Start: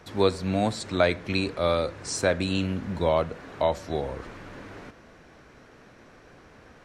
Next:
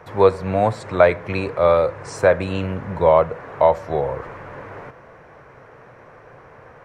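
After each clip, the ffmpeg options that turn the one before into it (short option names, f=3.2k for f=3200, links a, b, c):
-af "equalizer=f=125:t=o:w=1:g=11,equalizer=f=250:t=o:w=1:g=-5,equalizer=f=500:t=o:w=1:g=10,equalizer=f=1k:t=o:w=1:g=10,equalizer=f=2k:t=o:w=1:g=6,equalizer=f=4k:t=o:w=1:g=-6,equalizer=f=8k:t=o:w=1:g=-4,volume=-1.5dB"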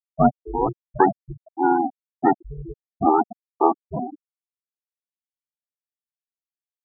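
-af "aeval=exprs='val(0)*sin(2*PI*240*n/s)':c=same,afftfilt=real='re*gte(hypot(re,im),0.282)':imag='im*gte(hypot(re,im),0.282)':win_size=1024:overlap=0.75"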